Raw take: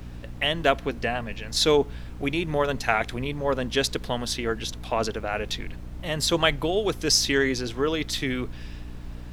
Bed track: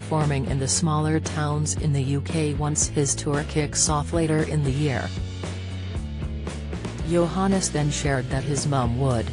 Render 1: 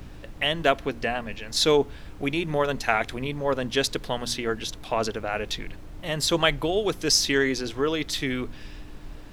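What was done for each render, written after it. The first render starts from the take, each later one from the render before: de-hum 60 Hz, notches 4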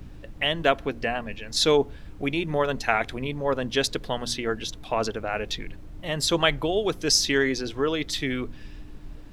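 denoiser 6 dB, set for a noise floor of -42 dBFS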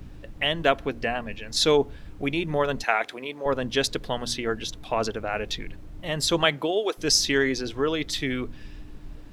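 2.84–3.46 HPF 390 Hz; 6.44–6.97 HPF 100 Hz -> 430 Hz 24 dB/oct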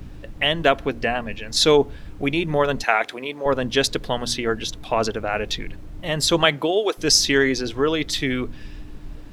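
gain +4.5 dB; limiter -2 dBFS, peak gain reduction 1.5 dB

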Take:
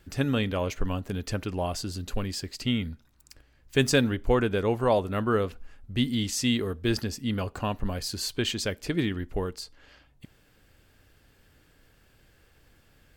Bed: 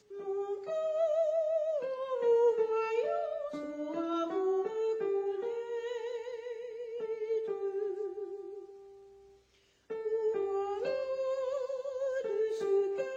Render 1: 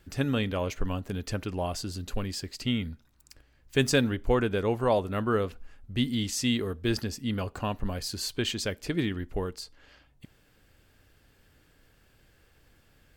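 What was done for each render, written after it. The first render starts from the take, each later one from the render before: gain -1.5 dB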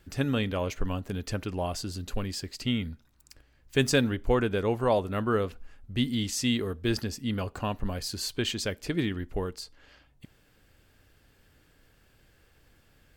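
nothing audible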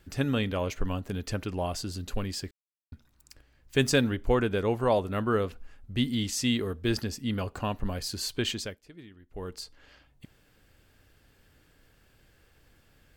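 2.51–2.92 mute; 8.51–9.59 dip -20 dB, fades 0.30 s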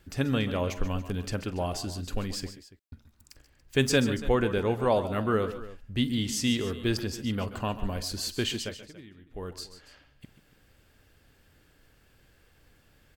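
tapped delay 45/131/145/284 ms -18/-15/-15.5/-17.5 dB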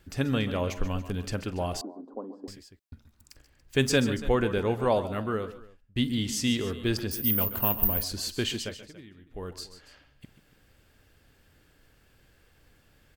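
1.81–2.48 elliptic band-pass 250–1000 Hz; 4.91–5.96 fade out, to -23 dB; 7.11–8.04 careless resampling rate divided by 3×, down filtered, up zero stuff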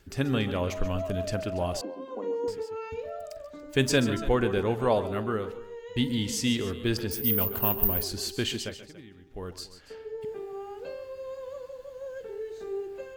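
add bed -5 dB

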